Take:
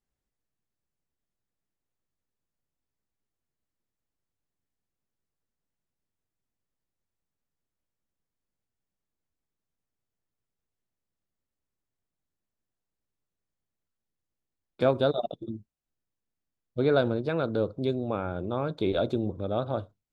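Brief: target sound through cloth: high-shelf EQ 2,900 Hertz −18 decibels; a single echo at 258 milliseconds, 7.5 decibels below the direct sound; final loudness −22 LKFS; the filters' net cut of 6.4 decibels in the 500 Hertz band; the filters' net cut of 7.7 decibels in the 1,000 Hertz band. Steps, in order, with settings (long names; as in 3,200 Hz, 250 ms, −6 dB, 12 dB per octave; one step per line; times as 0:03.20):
parametric band 500 Hz −5.5 dB
parametric band 1,000 Hz −6.5 dB
high-shelf EQ 2,900 Hz −18 dB
single-tap delay 258 ms −7.5 dB
level +10.5 dB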